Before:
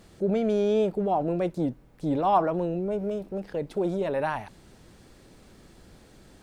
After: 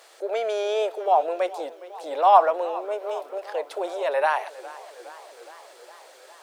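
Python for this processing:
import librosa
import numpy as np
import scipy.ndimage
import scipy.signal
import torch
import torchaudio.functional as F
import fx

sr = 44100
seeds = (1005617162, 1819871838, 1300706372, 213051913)

y = scipy.signal.sosfilt(scipy.signal.cheby2(4, 50, 210.0, 'highpass', fs=sr, output='sos'), x)
y = fx.echo_warbled(y, sr, ms=411, feedback_pct=71, rate_hz=2.8, cents=107, wet_db=-18.5)
y = y * librosa.db_to_amplitude(7.5)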